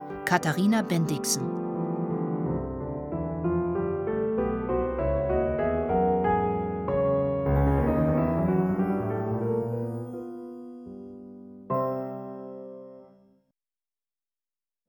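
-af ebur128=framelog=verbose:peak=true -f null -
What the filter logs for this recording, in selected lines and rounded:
Integrated loudness:
  I:         -27.0 LUFS
  Threshold: -37.9 LUFS
Loudness range:
  LRA:        11.0 LU
  Threshold: -48.1 LUFS
  LRA low:   -36.3 LUFS
  LRA high:  -25.3 LUFS
True peak:
  Peak:       -6.0 dBFS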